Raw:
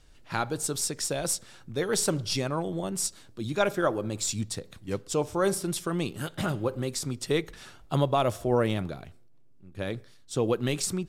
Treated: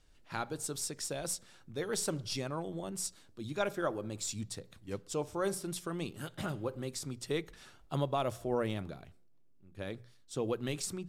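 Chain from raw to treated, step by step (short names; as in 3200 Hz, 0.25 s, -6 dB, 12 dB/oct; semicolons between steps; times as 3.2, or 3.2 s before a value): notches 60/120/180 Hz; gain -8 dB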